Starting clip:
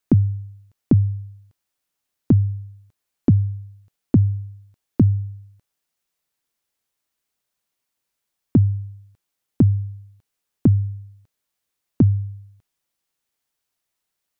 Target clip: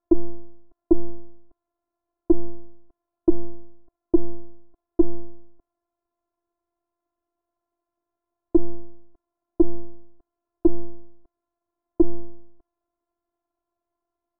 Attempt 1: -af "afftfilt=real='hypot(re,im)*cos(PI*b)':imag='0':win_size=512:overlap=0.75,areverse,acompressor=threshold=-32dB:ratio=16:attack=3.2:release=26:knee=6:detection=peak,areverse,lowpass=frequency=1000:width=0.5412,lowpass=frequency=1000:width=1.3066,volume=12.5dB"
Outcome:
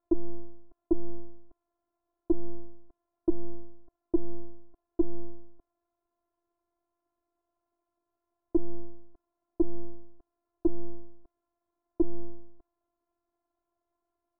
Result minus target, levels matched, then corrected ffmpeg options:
downward compressor: peak gain reduction +9 dB
-af "afftfilt=real='hypot(re,im)*cos(PI*b)':imag='0':win_size=512:overlap=0.75,areverse,acompressor=threshold=-22.5dB:ratio=16:attack=3.2:release=26:knee=6:detection=peak,areverse,lowpass=frequency=1000:width=0.5412,lowpass=frequency=1000:width=1.3066,volume=12.5dB"

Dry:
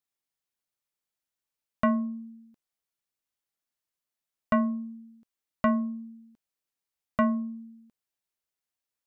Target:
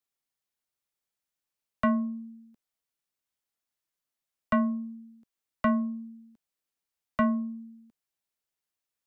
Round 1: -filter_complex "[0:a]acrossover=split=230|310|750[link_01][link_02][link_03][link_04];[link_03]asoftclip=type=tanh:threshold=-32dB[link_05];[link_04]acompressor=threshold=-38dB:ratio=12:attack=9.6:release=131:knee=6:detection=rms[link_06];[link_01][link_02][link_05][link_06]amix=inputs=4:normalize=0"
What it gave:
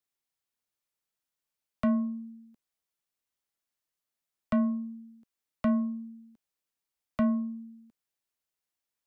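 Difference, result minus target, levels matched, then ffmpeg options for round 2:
downward compressor: peak gain reduction +14 dB
-filter_complex "[0:a]acrossover=split=230|310|750[link_01][link_02][link_03][link_04];[link_03]asoftclip=type=tanh:threshold=-32dB[link_05];[link_01][link_02][link_05][link_04]amix=inputs=4:normalize=0"

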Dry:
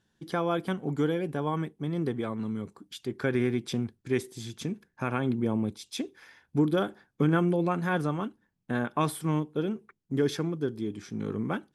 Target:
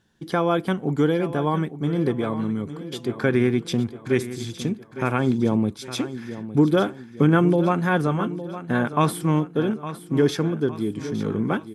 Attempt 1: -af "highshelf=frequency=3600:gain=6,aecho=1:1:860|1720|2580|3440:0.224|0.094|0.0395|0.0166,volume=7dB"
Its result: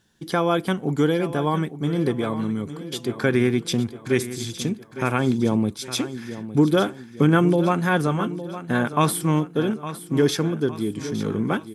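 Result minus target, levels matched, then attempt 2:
8,000 Hz band +6.5 dB
-af "highshelf=frequency=3600:gain=-2,aecho=1:1:860|1720|2580|3440:0.224|0.094|0.0395|0.0166,volume=7dB"

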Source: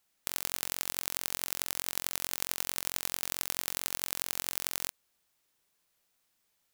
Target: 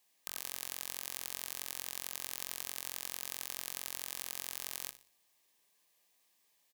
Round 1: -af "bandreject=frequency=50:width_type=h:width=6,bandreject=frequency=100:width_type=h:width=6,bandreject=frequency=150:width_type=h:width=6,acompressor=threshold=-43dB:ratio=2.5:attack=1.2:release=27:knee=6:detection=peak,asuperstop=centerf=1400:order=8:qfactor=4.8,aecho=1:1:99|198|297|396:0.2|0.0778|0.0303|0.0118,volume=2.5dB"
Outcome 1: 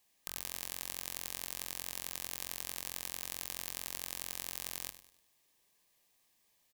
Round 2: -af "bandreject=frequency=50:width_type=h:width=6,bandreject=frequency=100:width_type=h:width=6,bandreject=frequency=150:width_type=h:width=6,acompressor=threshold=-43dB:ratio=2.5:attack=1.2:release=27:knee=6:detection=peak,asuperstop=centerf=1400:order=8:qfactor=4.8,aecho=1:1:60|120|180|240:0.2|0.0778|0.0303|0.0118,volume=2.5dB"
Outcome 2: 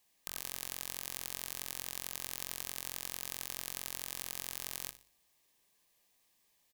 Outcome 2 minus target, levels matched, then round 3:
125 Hz band +7.0 dB
-af "bandreject=frequency=50:width_type=h:width=6,bandreject=frequency=100:width_type=h:width=6,bandreject=frequency=150:width_type=h:width=6,acompressor=threshold=-43dB:ratio=2.5:attack=1.2:release=27:knee=6:detection=peak,asuperstop=centerf=1400:order=8:qfactor=4.8,lowshelf=frequency=170:gain=-11.5,aecho=1:1:60|120|180|240:0.2|0.0778|0.0303|0.0118,volume=2.5dB"

